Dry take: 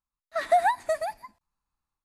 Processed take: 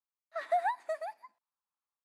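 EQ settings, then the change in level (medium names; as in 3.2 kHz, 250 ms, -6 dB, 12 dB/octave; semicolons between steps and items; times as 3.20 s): high-pass 520 Hz 12 dB/octave; treble shelf 4.1 kHz -11.5 dB; -7.0 dB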